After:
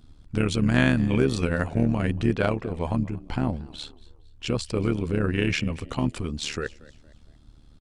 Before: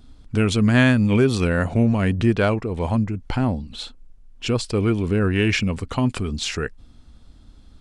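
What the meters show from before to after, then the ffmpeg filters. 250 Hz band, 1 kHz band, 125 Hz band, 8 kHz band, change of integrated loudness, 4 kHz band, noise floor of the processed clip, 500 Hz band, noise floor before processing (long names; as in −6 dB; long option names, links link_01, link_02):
−5.0 dB, −4.5 dB, −5.0 dB, −5.0 dB, −5.0 dB, −5.0 dB, −53 dBFS, −5.0 dB, −49 dBFS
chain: -filter_complex "[0:a]asplit=4[link_01][link_02][link_03][link_04];[link_02]adelay=230,afreqshift=73,volume=-22dB[link_05];[link_03]adelay=460,afreqshift=146,volume=-30.9dB[link_06];[link_04]adelay=690,afreqshift=219,volume=-39.7dB[link_07];[link_01][link_05][link_06][link_07]amix=inputs=4:normalize=0,tremolo=f=74:d=0.75,volume=-1.5dB"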